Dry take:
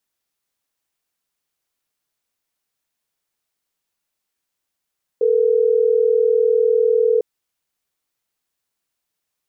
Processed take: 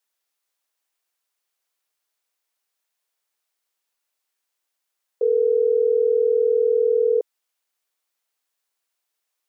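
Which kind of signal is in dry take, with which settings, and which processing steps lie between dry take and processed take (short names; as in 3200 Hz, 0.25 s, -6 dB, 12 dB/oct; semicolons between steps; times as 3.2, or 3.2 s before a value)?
call progress tone ringback tone, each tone -15.5 dBFS
HPF 450 Hz 12 dB/oct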